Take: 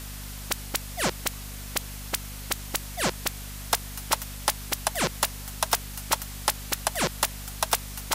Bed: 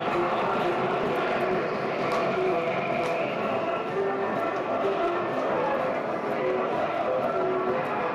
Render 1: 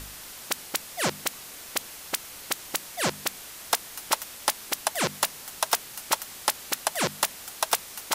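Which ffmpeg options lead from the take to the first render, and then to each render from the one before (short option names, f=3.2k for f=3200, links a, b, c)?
-af "bandreject=f=50:t=h:w=4,bandreject=f=100:t=h:w=4,bandreject=f=150:t=h:w=4,bandreject=f=200:t=h:w=4,bandreject=f=250:t=h:w=4"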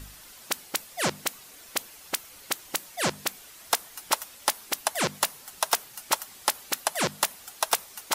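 -af "afftdn=nr=8:nf=-43"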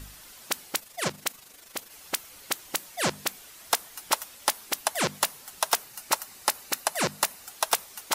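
-filter_complex "[0:a]asettb=1/sr,asplit=3[a][b][c];[a]atrim=end=0.794[d];[b]atrim=start=0.79:end=1.92,asetpts=PTS-STARTPTS,afade=t=in:d=0.004:c=qsin,afade=t=out:st=1.126:d=0.004:c=qsin,tremolo=f=25:d=0.571[e];[c]atrim=start=1.916[f];[d][e]acrossfade=d=0.004:c1=hsin:c2=qsin[g];[g][f]acrossfade=d=0.004:c1=qsin:c2=hsin,asettb=1/sr,asplit=3[h][i][j];[h]atrim=end=5.794[k];[i]atrim=start=5.79:end=7.5,asetpts=PTS-STARTPTS,afade=t=in:d=0.004:c=qsin,afade=t=out:st=1.706:d=0.004:c=qsin,bandreject=f=3.3k:w=9.8[l];[j]atrim=start=7.496[m];[k][l]acrossfade=d=0.004:c1=hsin:c2=qsin[n];[n][m]acrossfade=d=0.004:c1=qsin:c2=hsin"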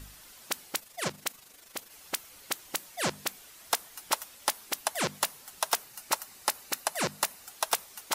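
-af "volume=-3.5dB"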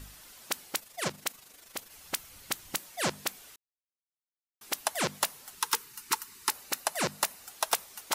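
-filter_complex "[0:a]asettb=1/sr,asplit=3[a][b][c];[a]atrim=end=1.574[d];[b]atrim=start=1.57:end=2.77,asetpts=PTS-STARTPTS,afade=t=in:d=0.004:c=qsin,afade=t=out:st=1.196:d=0.004:c=qsin,asubboost=boost=8.5:cutoff=210[e];[c]atrim=start=2.766[f];[d][e]acrossfade=d=0.004:c1=hsin:c2=qsin[g];[g][f]acrossfade=d=0.004:c1=qsin:c2=hsin,asettb=1/sr,asplit=3[h][i][j];[h]atrim=end=5.554[k];[i]atrim=start=5.55:end=6.51,asetpts=PTS-STARTPTS,afade=t=in:d=0.004:c=qsin,afade=t=out:st=0.956:d=0.004:c=qsin,asuperstop=centerf=640:order=20:qfactor=1.7[l];[j]atrim=start=6.506[m];[k][l]acrossfade=d=0.004:c1=hsin:c2=qsin[n];[n][m]acrossfade=d=0.004:c1=qsin:c2=hsin,asplit=3[o][p][q];[o]atrim=end=3.56,asetpts=PTS-STARTPTS,afade=t=out:st=3.556:d=0.004:c=hsin[r];[p]atrim=start=3.56:end=4.61,asetpts=PTS-STARTPTS,volume=0[s];[q]atrim=start=4.61,asetpts=PTS-STARTPTS,afade=t=in:d=0.004:c=hsin[t];[r][s][t]concat=n=3:v=0:a=1"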